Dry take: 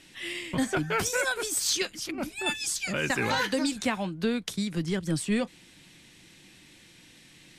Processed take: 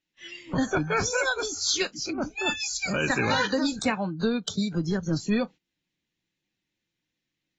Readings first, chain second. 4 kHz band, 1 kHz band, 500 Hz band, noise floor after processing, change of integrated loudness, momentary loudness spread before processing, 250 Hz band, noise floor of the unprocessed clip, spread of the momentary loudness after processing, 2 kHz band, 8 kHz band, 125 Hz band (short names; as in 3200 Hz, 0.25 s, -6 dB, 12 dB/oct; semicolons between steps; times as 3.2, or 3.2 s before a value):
+1.5 dB, +2.5 dB, +2.5 dB, -84 dBFS, +2.0 dB, 6 LU, +2.5 dB, -55 dBFS, 6 LU, +2.0 dB, -0.5 dB, +3.0 dB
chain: gate -42 dBFS, range -18 dB; spectral noise reduction 20 dB; in parallel at +3 dB: compressor 6:1, threshold -40 dBFS, peak gain reduction 16.5 dB; on the sum: AAC 24 kbps 32000 Hz